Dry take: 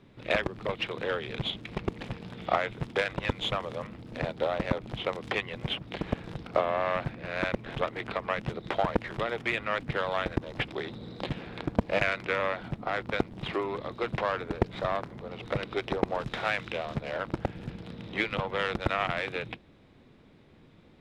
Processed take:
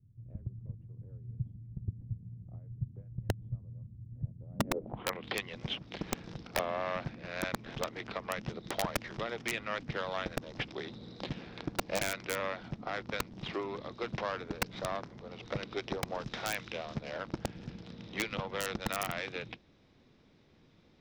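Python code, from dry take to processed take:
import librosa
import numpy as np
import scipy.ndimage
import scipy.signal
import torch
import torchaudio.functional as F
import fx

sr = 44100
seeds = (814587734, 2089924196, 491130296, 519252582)

y = fx.filter_sweep_lowpass(x, sr, from_hz=110.0, to_hz=5700.0, start_s=4.46, end_s=5.38, q=3.5)
y = fx.dynamic_eq(y, sr, hz=220.0, q=1.3, threshold_db=-43.0, ratio=4.0, max_db=4)
y = (np.mod(10.0 ** (14.0 / 20.0) * y + 1.0, 2.0) - 1.0) / 10.0 ** (14.0 / 20.0)
y = y * librosa.db_to_amplitude(-7.0)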